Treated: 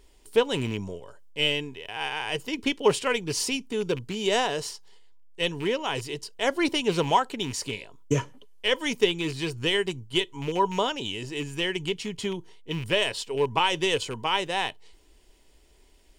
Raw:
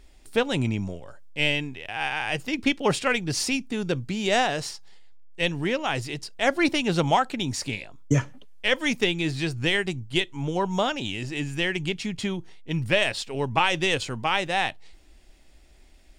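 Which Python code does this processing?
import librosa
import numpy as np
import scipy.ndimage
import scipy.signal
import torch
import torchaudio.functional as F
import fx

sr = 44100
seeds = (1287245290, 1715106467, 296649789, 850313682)

y = fx.rattle_buzz(x, sr, strikes_db=-28.0, level_db=-26.0)
y = fx.high_shelf(y, sr, hz=5400.0, db=8.0)
y = fx.small_body(y, sr, hz=(430.0, 970.0, 3000.0), ring_ms=30, db=11)
y = F.gain(torch.from_numpy(y), -5.5).numpy()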